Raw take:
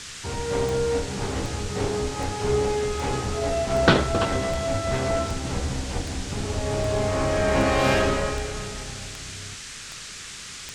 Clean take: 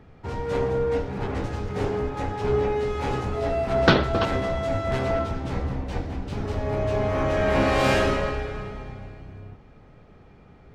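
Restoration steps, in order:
click removal
noise reduction from a noise print 11 dB

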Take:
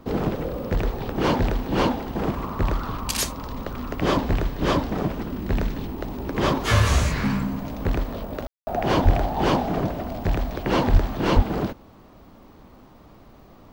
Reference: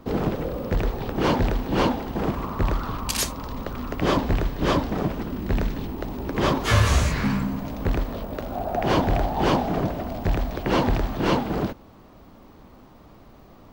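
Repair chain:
clipped peaks rebuilt −7.5 dBFS
high-pass at the plosives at 0:09.04/0:10.92/0:11.35
ambience match 0:08.47–0:08.67

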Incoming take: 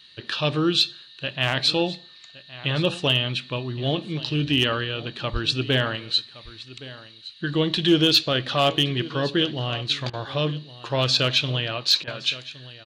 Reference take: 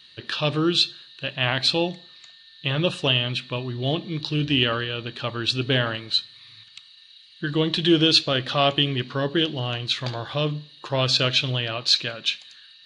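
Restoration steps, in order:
clipped peaks rebuilt −9.5 dBFS
high-pass at the plosives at 0:05.32
repair the gap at 0:10.10/0:12.04, 34 ms
echo removal 1,117 ms −17.5 dB

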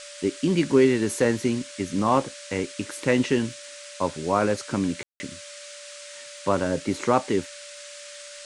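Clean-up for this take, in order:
click removal
notch filter 580 Hz, Q 30
ambience match 0:05.03–0:05.20
noise reduction from a noise print 27 dB

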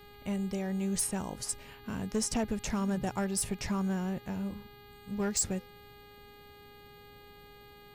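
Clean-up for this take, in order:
clipped peaks rebuilt −24 dBFS
hum removal 410 Hz, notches 11

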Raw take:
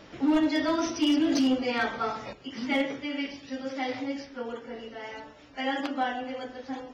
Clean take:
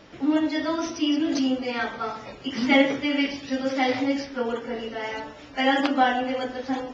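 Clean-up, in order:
clipped peaks rebuilt −18.5 dBFS
level correction +8.5 dB, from 0:02.33

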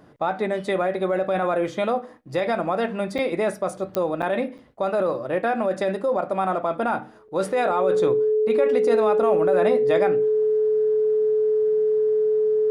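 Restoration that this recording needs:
click removal
notch filter 430 Hz, Q 30
repair the gap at 0:03.18/0:04.22/0:04.58/0:07.28, 7 ms

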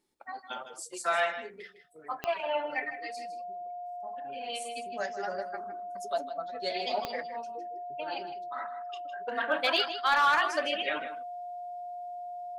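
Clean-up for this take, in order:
clipped peaks rebuilt −17.5 dBFS
click removal
notch filter 710 Hz, Q 30
echo removal 157 ms −11.5 dB

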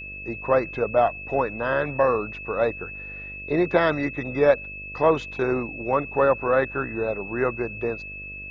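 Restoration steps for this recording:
hum removal 49.4 Hz, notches 13
notch filter 2,600 Hz, Q 30

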